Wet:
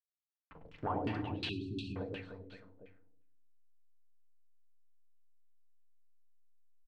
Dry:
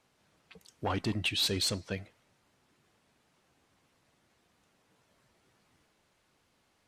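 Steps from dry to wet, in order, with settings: level-crossing sampler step -47.5 dBFS; compressor, threshold -35 dBFS, peak gain reduction 8.5 dB; reverse bouncing-ball echo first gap 0.1 s, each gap 1.3×, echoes 5; FDN reverb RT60 0.73 s, low-frequency decay 1.35×, high-frequency decay 0.95×, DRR 5 dB; LFO low-pass saw down 2.8 Hz 450–3000 Hz; 1.49–1.96 brick-wall FIR band-stop 410–2400 Hz; gain -1.5 dB

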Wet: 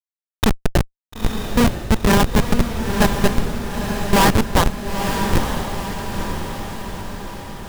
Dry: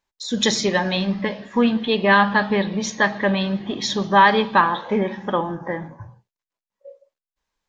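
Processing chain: G.711 law mismatch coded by A; HPF 110 Hz 24 dB/oct; Schmitt trigger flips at -12 dBFS; on a send: diffused feedback echo 0.942 s, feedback 57%, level -5.5 dB; on the sum: gain +9 dB

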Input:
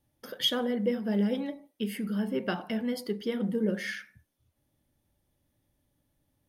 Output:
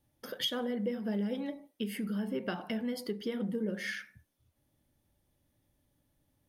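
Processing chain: compressor 2.5:1, threshold -33 dBFS, peak gain reduction 7.5 dB

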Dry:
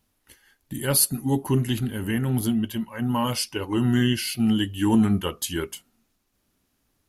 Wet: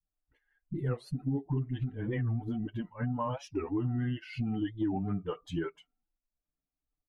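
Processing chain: per-bin expansion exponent 1.5; LPF 1300 Hz 12 dB/oct; comb 6.7 ms, depth 63%; dispersion highs, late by 49 ms, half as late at 340 Hz; compressor 6:1, threshold -34 dBFS, peak gain reduction 16.5 dB; record warp 45 rpm, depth 250 cents; gain +4 dB

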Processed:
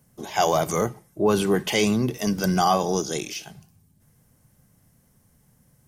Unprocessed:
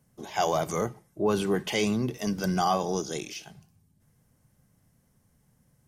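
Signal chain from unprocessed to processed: high shelf 9800 Hz +6.5 dB; gain +5 dB

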